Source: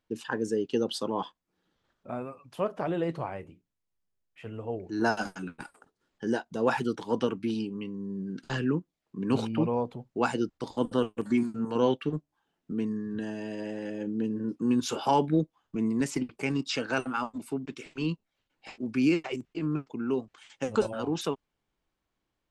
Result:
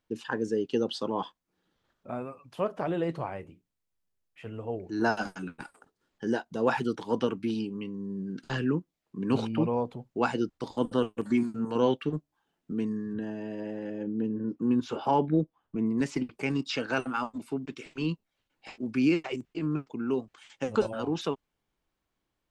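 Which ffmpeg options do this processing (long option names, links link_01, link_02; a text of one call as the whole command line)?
ffmpeg -i in.wav -filter_complex "[0:a]asettb=1/sr,asplit=3[link_01][link_02][link_03];[link_01]atrim=end=13.134[link_04];[link_02]atrim=start=13.13:end=15.98,asetpts=PTS-STARTPTS,afade=type=in:duration=0.004:curve=qsin,afade=type=out:start_time=2.846:duration=0.004:curve=qsin,lowpass=frequency=1500:poles=1[link_05];[link_03]atrim=start=15.976[link_06];[link_04][link_05]acrossfade=duration=0.004:curve1=hsin:curve2=qsin[link_07];[link_07][link_06]acrossfade=duration=0.004:curve1=qsin:curve2=hsin,acrossover=split=6000[link_08][link_09];[link_09]acompressor=threshold=-59dB:ratio=4:attack=1:release=60[link_10];[link_08][link_10]amix=inputs=2:normalize=0" out.wav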